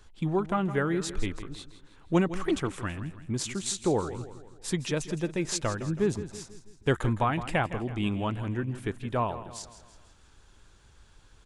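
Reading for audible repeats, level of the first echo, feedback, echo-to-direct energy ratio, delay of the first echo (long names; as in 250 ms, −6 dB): 4, −13.5 dB, 47%, −12.5 dB, 163 ms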